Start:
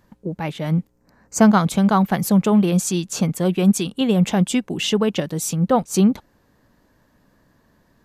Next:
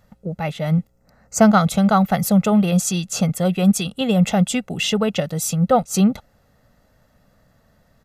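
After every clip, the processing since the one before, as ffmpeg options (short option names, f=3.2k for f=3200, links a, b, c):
-af "aecho=1:1:1.5:0.65"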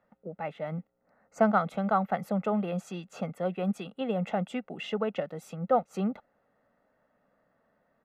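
-filter_complex "[0:a]acrossover=split=220 2400:gain=0.0891 1 0.0708[a][b][c];[a][b][c]amix=inputs=3:normalize=0,volume=-8dB"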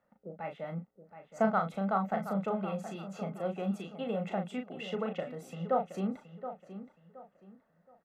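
-filter_complex "[0:a]asplit=2[a][b];[b]adelay=36,volume=-6dB[c];[a][c]amix=inputs=2:normalize=0,asplit=2[d][e];[e]adelay=722,lowpass=f=3.4k:p=1,volume=-11.5dB,asplit=2[f][g];[g]adelay=722,lowpass=f=3.4k:p=1,volume=0.3,asplit=2[h][i];[i]adelay=722,lowpass=f=3.4k:p=1,volume=0.3[j];[d][f][h][j]amix=inputs=4:normalize=0,volume=-5dB"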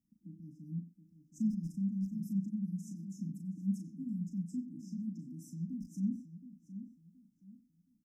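-filter_complex "[0:a]asplit=2[a][b];[b]adelay=90,highpass=300,lowpass=3.4k,asoftclip=type=hard:threshold=-23dB,volume=-7dB[c];[a][c]amix=inputs=2:normalize=0,afftfilt=real='re*(1-between(b*sr/4096,330,4900))':imag='im*(1-between(b*sr/4096,330,4900))':win_size=4096:overlap=0.75"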